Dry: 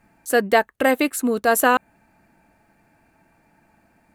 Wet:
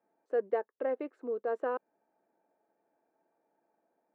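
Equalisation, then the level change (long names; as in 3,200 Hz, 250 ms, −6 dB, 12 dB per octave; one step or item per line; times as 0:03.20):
dynamic equaliser 700 Hz, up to −5 dB, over −33 dBFS, Q 2.3
four-pole ladder band-pass 540 Hz, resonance 45%
high-frequency loss of the air 58 metres
−3.0 dB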